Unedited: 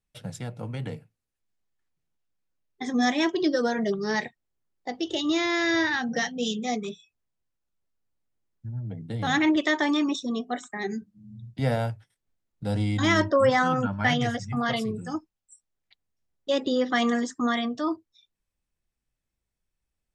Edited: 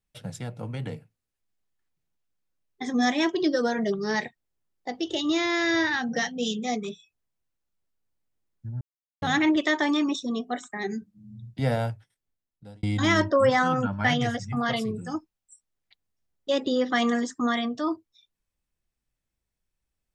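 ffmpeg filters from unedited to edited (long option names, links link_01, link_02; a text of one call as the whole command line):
ffmpeg -i in.wav -filter_complex "[0:a]asplit=4[link_01][link_02][link_03][link_04];[link_01]atrim=end=8.81,asetpts=PTS-STARTPTS,afade=type=out:start_time=8.806:duration=0.004:curve=hsin[link_05];[link_02]atrim=start=8.81:end=9.22,asetpts=PTS-STARTPTS,volume=0[link_06];[link_03]atrim=start=9.22:end=12.83,asetpts=PTS-STARTPTS,afade=type=in:duration=0.004:curve=hsin,afade=type=out:start_time=2.65:duration=0.96[link_07];[link_04]atrim=start=12.83,asetpts=PTS-STARTPTS,afade=type=in:duration=0.004:curve=hsin[link_08];[link_05][link_06][link_07][link_08]concat=n=4:v=0:a=1" out.wav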